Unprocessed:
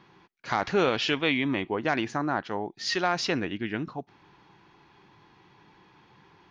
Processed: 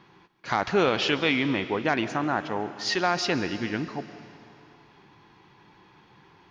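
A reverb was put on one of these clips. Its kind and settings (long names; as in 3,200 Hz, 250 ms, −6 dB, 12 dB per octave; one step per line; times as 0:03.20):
comb and all-pass reverb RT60 2.5 s, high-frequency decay 1×, pre-delay 95 ms, DRR 11.5 dB
level +1.5 dB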